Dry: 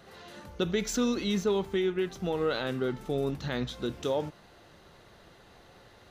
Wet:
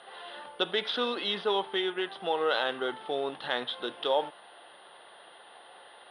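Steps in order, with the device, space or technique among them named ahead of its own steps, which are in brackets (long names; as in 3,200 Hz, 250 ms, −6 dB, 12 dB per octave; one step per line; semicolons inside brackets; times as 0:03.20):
toy sound module (linearly interpolated sample-rate reduction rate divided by 4×; switching amplifier with a slow clock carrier 9,500 Hz; loudspeaker in its box 720–4,000 Hz, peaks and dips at 800 Hz +3 dB, 1,300 Hz −3 dB, 2,300 Hz −8 dB, 3,300 Hz +9 dB)
level +8 dB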